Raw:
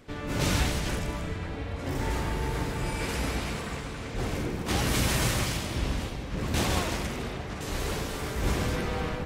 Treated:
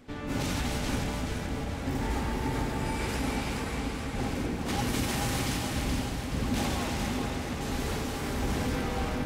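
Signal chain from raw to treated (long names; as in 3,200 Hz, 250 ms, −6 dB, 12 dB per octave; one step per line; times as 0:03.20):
brickwall limiter −19.5 dBFS, peak gain reduction 6.5 dB
hollow resonant body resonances 250/810 Hz, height 10 dB, ringing for 95 ms
on a send: echo with a time of its own for lows and highs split 480 Hz, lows 586 ms, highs 426 ms, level −5.5 dB
on the sum: level −2.5 dB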